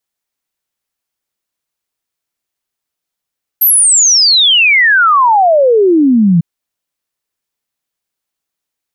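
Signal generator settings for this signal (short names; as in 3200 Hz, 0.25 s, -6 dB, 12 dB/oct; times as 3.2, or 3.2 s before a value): log sweep 13000 Hz -> 160 Hz 2.80 s -5 dBFS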